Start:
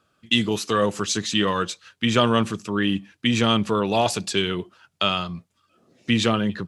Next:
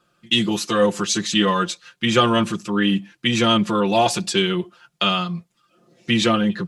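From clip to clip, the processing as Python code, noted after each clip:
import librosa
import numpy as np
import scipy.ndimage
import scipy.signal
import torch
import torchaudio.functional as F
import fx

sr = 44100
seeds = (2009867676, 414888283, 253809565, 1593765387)

y = x + 1.0 * np.pad(x, (int(5.7 * sr / 1000.0), 0))[:len(x)]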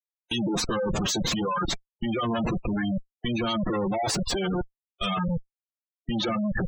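y = fx.dereverb_blind(x, sr, rt60_s=0.82)
y = fx.schmitt(y, sr, flips_db=-32.5)
y = fx.spec_gate(y, sr, threshold_db=-15, keep='strong')
y = y * 10.0 ** (-3.0 / 20.0)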